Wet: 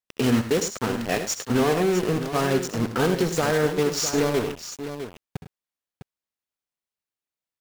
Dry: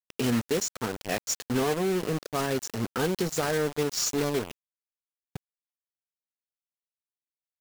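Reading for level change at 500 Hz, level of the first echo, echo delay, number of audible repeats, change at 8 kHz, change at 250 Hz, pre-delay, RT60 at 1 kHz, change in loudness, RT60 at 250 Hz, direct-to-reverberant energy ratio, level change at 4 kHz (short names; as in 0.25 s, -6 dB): +5.5 dB, -13.0 dB, 66 ms, 3, +2.0 dB, +6.0 dB, none, none, +4.5 dB, none, none, +3.5 dB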